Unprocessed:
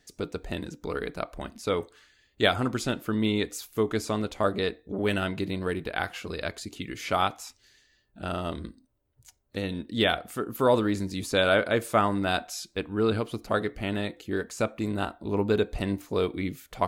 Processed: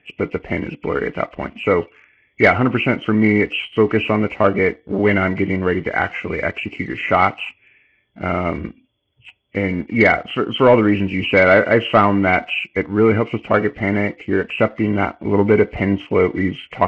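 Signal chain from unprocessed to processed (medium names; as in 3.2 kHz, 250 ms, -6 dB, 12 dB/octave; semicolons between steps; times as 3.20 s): knee-point frequency compression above 1.9 kHz 4:1; high-pass 83 Hz 12 dB/octave; waveshaping leveller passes 1; distance through air 110 m; trim +8 dB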